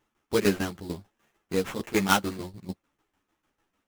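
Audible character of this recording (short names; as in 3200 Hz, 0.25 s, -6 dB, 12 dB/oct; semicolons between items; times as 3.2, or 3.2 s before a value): tremolo saw down 6.7 Hz, depth 80%; aliases and images of a low sample rate 4500 Hz, jitter 20%; a shimmering, thickened sound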